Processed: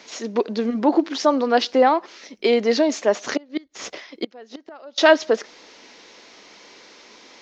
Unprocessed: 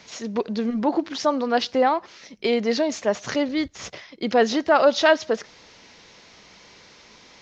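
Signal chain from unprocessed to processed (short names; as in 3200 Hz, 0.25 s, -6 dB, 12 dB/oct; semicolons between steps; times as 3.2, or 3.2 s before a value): 3.34–4.98 flipped gate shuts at -15 dBFS, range -28 dB; resonant low shelf 190 Hz -13.5 dB, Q 1.5; gain +2.5 dB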